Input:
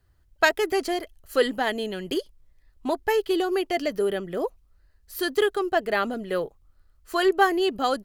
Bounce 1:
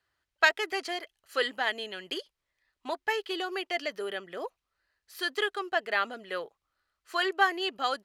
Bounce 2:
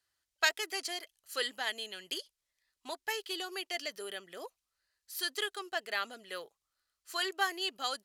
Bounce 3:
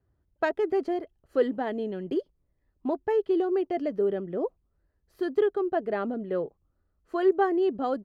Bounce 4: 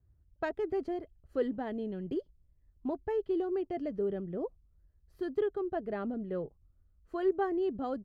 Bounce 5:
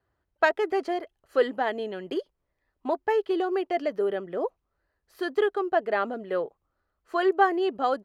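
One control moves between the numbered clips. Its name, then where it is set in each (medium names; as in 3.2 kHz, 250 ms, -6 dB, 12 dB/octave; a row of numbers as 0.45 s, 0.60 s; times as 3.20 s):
band-pass filter, frequency: 2.4 kHz, 6.1 kHz, 270 Hz, 100 Hz, 700 Hz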